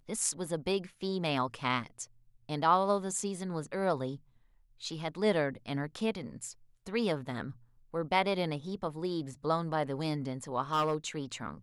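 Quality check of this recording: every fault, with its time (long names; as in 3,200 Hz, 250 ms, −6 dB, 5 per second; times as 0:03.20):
0:10.73–0:10.95: clipping −24.5 dBFS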